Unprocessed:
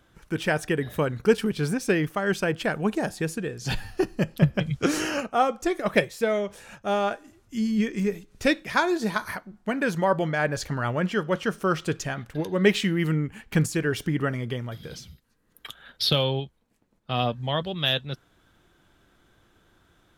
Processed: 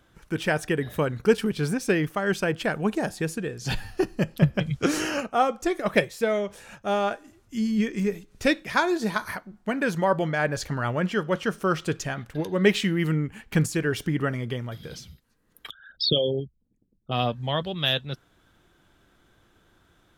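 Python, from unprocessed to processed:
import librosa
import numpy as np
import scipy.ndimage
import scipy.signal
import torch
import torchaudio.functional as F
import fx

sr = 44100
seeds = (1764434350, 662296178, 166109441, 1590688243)

y = fx.envelope_sharpen(x, sr, power=3.0, at=(15.69, 17.11), fade=0.02)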